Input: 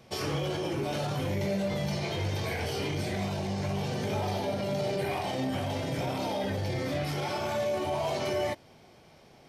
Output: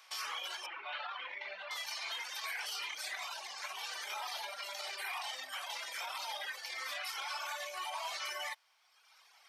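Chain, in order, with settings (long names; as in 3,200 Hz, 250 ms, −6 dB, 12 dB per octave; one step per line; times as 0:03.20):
0:00.66–0:01.71: low-pass filter 3,200 Hz 24 dB per octave
reverb reduction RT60 1.3 s
Chebyshev high-pass filter 1,100 Hz, order 3
brickwall limiter −34 dBFS, peak gain reduction 7.5 dB
level +3.5 dB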